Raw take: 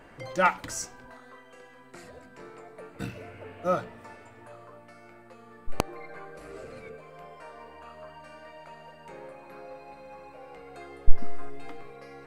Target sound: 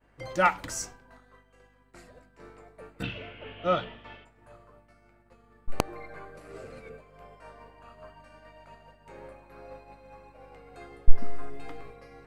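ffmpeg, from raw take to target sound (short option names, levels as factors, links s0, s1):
-filter_complex "[0:a]aeval=exprs='val(0)+0.00251*(sin(2*PI*50*n/s)+sin(2*PI*2*50*n/s)/2+sin(2*PI*3*50*n/s)/3+sin(2*PI*4*50*n/s)/4+sin(2*PI*5*50*n/s)/5)':c=same,asplit=3[s0][s1][s2];[s0]afade=t=out:st=3.02:d=0.02[s3];[s1]lowpass=f=3200:t=q:w=9.1,afade=t=in:st=3.02:d=0.02,afade=t=out:st=4.24:d=0.02[s4];[s2]afade=t=in:st=4.24:d=0.02[s5];[s3][s4][s5]amix=inputs=3:normalize=0,agate=range=0.0224:threshold=0.01:ratio=3:detection=peak"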